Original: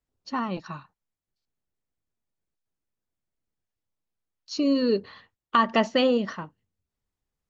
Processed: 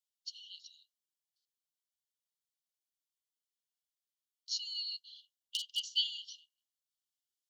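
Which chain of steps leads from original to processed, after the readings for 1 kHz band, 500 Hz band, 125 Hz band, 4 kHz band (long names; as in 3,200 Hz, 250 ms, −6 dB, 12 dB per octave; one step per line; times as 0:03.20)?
below −40 dB, below −40 dB, can't be measured, 0.0 dB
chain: wave folding −11 dBFS
linear-phase brick-wall high-pass 2,800 Hz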